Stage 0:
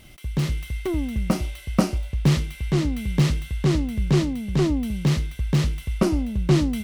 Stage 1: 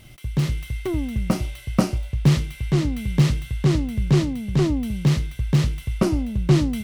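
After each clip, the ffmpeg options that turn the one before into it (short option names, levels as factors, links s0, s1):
-af "equalizer=f=120:t=o:w=0.25:g=12"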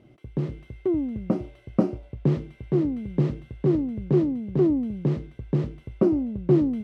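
-af "bandpass=f=360:t=q:w=1.4:csg=0,volume=1.41"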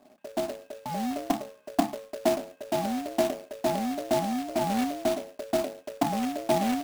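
-af "aeval=exprs='val(0)*sin(2*PI*500*n/s)':c=same,highpass=f=220:w=0.5412,highpass=f=220:w=1.3066,equalizer=f=250:t=q:w=4:g=8,equalizer=f=380:t=q:w=4:g=-8,equalizer=f=590:t=q:w=4:g=6,equalizer=f=900:t=q:w=4:g=-9,equalizer=f=1400:t=q:w=4:g=-5,equalizer=f=2100:t=q:w=4:g=-9,lowpass=f=2600:w=0.5412,lowpass=f=2600:w=1.3066,acrusher=bits=2:mode=log:mix=0:aa=0.000001"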